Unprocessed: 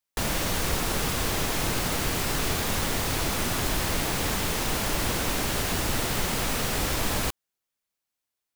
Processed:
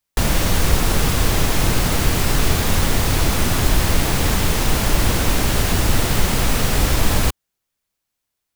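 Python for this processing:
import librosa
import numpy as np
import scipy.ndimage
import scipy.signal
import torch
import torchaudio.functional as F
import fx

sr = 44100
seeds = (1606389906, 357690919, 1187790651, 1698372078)

y = fx.low_shelf(x, sr, hz=150.0, db=9.0)
y = y * 10.0 ** (6.0 / 20.0)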